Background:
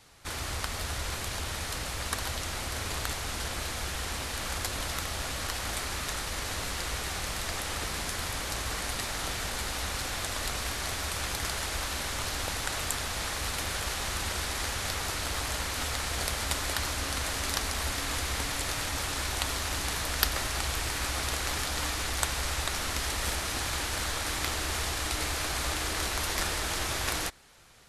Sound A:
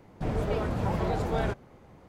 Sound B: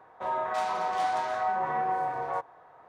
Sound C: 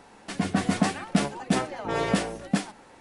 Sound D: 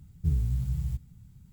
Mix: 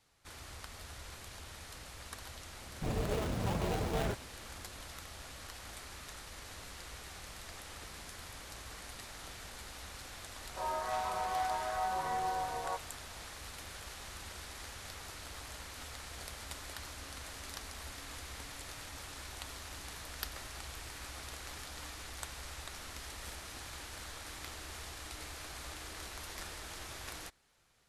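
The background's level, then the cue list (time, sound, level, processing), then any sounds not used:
background -14.5 dB
2.61 add A -5.5 dB + switching dead time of 0.26 ms
10.36 add B -6.5 dB
not used: C, D

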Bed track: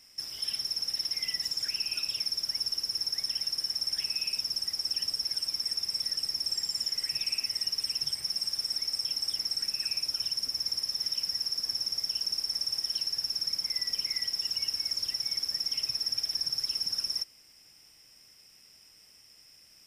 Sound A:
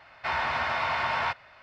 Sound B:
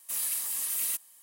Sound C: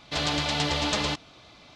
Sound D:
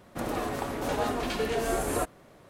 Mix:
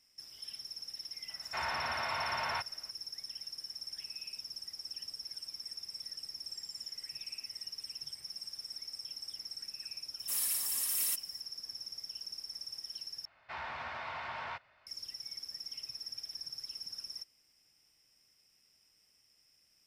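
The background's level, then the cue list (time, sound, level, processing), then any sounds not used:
bed track -12.5 dB
1.29 add A -8 dB
10.19 add B -2.5 dB
13.25 replace with A -13.5 dB + Doppler distortion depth 0.17 ms
not used: C, D

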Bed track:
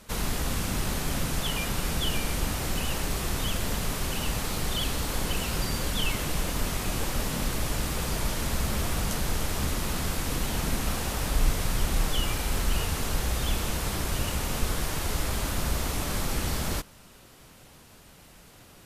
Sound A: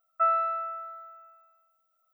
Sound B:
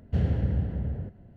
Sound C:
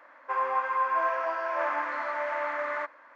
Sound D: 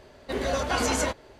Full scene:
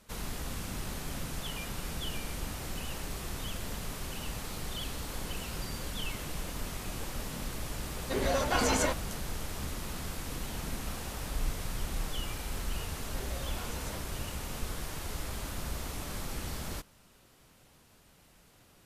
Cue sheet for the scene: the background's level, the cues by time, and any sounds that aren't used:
bed track -9 dB
7.81 add D -2.5 dB
12.87 add D -3.5 dB + compressor, threshold -40 dBFS
not used: A, B, C

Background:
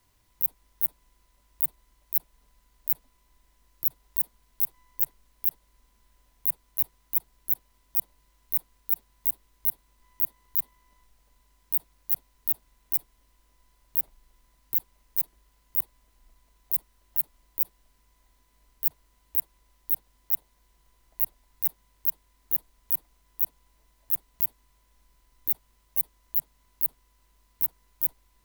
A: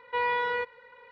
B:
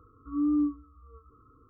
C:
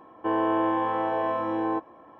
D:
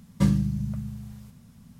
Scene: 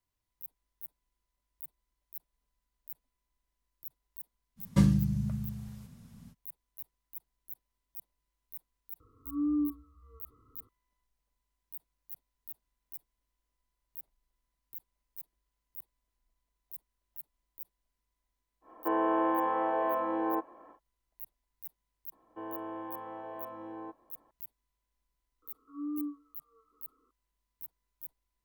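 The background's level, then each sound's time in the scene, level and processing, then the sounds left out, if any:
background -19.5 dB
4.56 add D -2 dB, fades 0.05 s
9 add B -4 dB + LPF 1200 Hz
18.61 add C -3 dB, fades 0.10 s + three-band isolator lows -14 dB, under 240 Hz, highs -18 dB, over 2700 Hz
22.12 add C -16 dB + high shelf 2400 Hz -5.5 dB
25.42 add B -9.5 dB + HPF 250 Hz 24 dB/oct
not used: A

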